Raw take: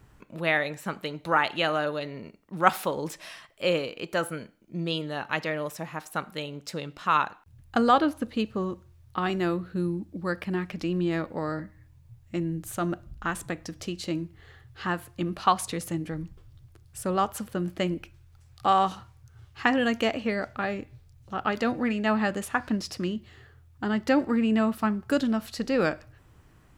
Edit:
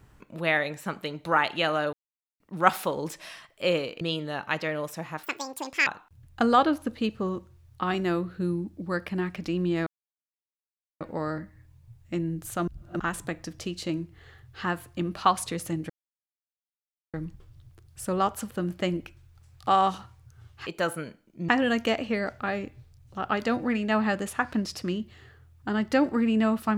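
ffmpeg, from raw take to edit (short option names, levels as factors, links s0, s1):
-filter_complex "[0:a]asplit=12[s0][s1][s2][s3][s4][s5][s6][s7][s8][s9][s10][s11];[s0]atrim=end=1.93,asetpts=PTS-STARTPTS,afade=t=out:st=1.926:d=0.004:c=hsin[s12];[s1]atrim=start=1.93:end=2.4,asetpts=PTS-STARTPTS,volume=0[s13];[s2]atrim=start=2.4:end=4.012,asetpts=PTS-STARTPTS,afade=t=in:d=0.004:c=hsin[s14];[s3]atrim=start=4.828:end=6.054[s15];[s4]atrim=start=6.05:end=7.22,asetpts=PTS-STARTPTS,asetrate=81144,aresample=44100[s16];[s5]atrim=start=7.216:end=11.22,asetpts=PTS-STARTPTS,afade=t=out:st=4:d=0.004:c=hsin,apad=pad_dur=1.14[s17];[s6]atrim=start=11.22:end=12.892,asetpts=PTS-STARTPTS,afade=t=in:d=0.004:c=hsin[s18];[s7]atrim=start=12.888:end=13.212,asetpts=PTS-STARTPTS,areverse[s19];[s8]atrim=start=13.208:end=16.11,asetpts=PTS-STARTPTS,afade=t=out:st=2.898:d=0.004:c=hsin,apad=pad_dur=1.24[s20];[s9]atrim=start=16.11:end=19.642,asetpts=PTS-STARTPTS,afade=t=in:d=0.004:c=hsin[s21];[s10]atrim=start=4.008:end=4.832[s22];[s11]atrim=start=19.638[s23];[s12][s13][s14]concat=n=3:v=0:a=1[s24];[s24][s15]acrossfade=d=0.004:c1=hsin:c2=hsin[s25];[s25][s16]acrossfade=d=0.004:c1=hsin:c2=hsin[s26];[s17][s18]concat=n=2:v=0:a=1[s27];[s26][s27]acrossfade=d=0.004:c1=hsin:c2=hsin[s28];[s28][s19]acrossfade=d=0.004:c1=hsin:c2=hsin[s29];[s20][s21]concat=n=2:v=0:a=1[s30];[s29][s30]acrossfade=d=0.004:c1=hsin:c2=hsin[s31];[s31][s22]acrossfade=d=0.004:c1=hsin:c2=hsin[s32];[s32][s23]acrossfade=d=0.004:c1=hsin:c2=hsin"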